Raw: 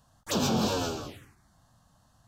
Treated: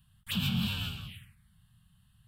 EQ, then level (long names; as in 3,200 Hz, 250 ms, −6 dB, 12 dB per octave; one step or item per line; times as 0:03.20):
drawn EQ curve 190 Hz 0 dB, 310 Hz −27 dB, 540 Hz −29 dB, 3,000 Hz +5 dB, 6,300 Hz −23 dB, 9,000 Hz −1 dB
+1.5 dB